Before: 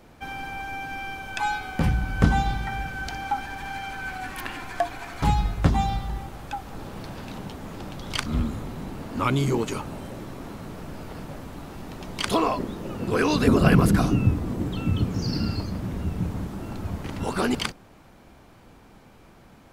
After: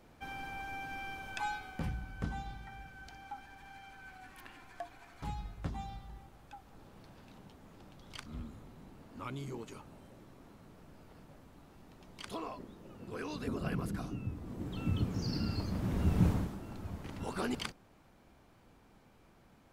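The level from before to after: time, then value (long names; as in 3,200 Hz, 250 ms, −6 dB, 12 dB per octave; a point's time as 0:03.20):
0:01.28 −9 dB
0:02.23 −19 dB
0:14.28 −19 dB
0:14.87 −9 dB
0:15.46 −9 dB
0:16.28 +1 dB
0:16.61 −11.5 dB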